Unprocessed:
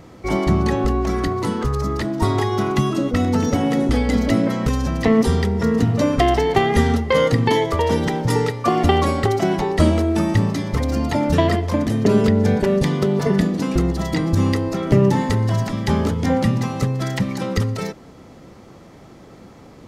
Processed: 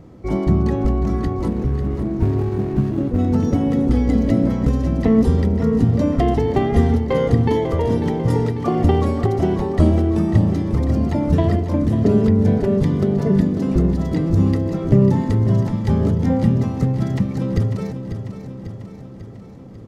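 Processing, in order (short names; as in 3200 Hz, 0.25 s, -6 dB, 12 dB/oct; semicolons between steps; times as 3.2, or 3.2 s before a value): 1.48–3.19 median filter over 41 samples; tilt shelf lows +7 dB, about 680 Hz; on a send: feedback echo 0.545 s, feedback 60%, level -10 dB; on the sum: gain -4.5 dB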